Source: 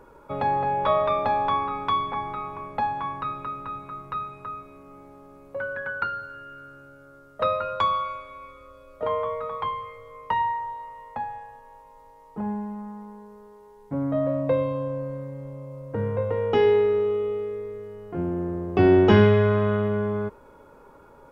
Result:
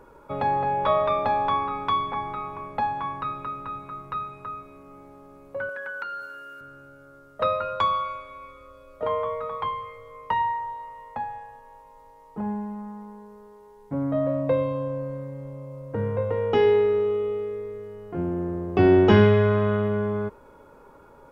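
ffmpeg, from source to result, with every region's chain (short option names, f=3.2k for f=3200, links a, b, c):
-filter_complex "[0:a]asettb=1/sr,asplit=3[a][b][c];[a]atrim=end=5.694[d];[b]atrim=start=5.69:end=6.61,asetpts=PTS-STARTPTS,afade=t=in:d=0.004:c=qsin,afade=t=out:st=0.916:d=0.004:c=qsin,highpass=290,highshelf=f=4.6k:g=9,acompressor=threshold=-32dB:ratio=2.5:attack=3.2:release=140:knee=1:detection=peak[e];[c]atrim=start=6.606[f];[d][e]acrossfade=d=0.004:c1=hsin:c2=qsin[g];[g][f]acrossfade=d=0.004:c1=qsin:c2=hsin"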